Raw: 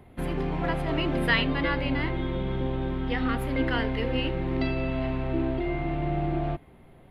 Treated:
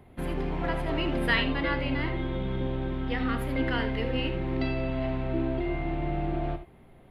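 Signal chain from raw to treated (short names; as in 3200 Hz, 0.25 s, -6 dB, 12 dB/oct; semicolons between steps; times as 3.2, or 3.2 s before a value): non-linear reverb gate 0.1 s rising, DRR 9.5 dB; gain -2 dB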